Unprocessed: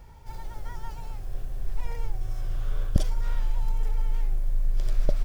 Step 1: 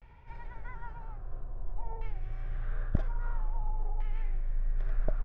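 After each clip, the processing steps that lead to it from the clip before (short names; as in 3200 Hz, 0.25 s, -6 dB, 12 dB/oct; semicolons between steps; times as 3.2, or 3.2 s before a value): LFO low-pass saw down 0.5 Hz 860–2500 Hz; vibrato 0.45 Hz 86 cents; gain -6.5 dB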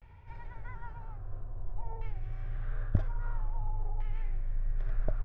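bell 94 Hz +10.5 dB 0.41 oct; gain -1.5 dB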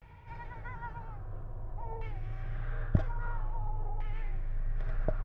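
HPF 56 Hz 6 dB/oct; comb 6.3 ms, depth 31%; gain +4 dB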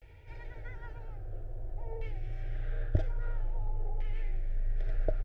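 fixed phaser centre 440 Hz, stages 4; gain +2.5 dB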